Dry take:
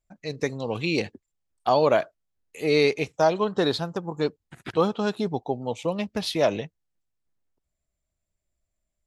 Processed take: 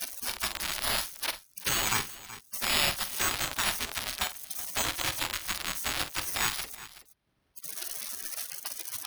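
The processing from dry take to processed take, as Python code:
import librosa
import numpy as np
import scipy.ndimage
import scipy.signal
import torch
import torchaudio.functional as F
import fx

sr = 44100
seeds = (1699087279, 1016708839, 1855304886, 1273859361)

y = x + 0.5 * 10.0 ** (-18.5 / 20.0) * np.diff(np.sign(x), prepend=np.sign(x[:1]))
y = np.repeat(y[::6], 6)[:len(y)]
y = fx.spec_gate(y, sr, threshold_db=-20, keep='weak')
y = fx.low_shelf(y, sr, hz=200.0, db=3.0)
y = fx.notch(y, sr, hz=480.0, q=13.0)
y = fx.echo_multitap(y, sr, ms=(48, 375), db=(-12.5, -20.0))
y = fx.band_squash(y, sr, depth_pct=40)
y = y * 10.0 ** (3.0 / 20.0)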